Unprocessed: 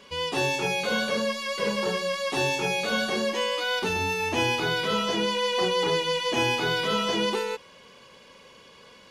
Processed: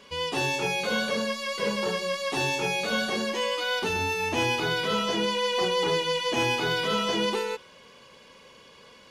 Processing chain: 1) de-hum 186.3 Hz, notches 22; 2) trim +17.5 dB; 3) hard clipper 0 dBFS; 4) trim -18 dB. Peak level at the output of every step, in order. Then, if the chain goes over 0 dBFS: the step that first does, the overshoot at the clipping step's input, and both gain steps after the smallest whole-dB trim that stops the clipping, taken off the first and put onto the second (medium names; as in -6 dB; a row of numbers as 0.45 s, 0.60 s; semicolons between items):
-11.0 dBFS, +6.5 dBFS, 0.0 dBFS, -18.0 dBFS; step 2, 6.5 dB; step 2 +10.5 dB, step 4 -11 dB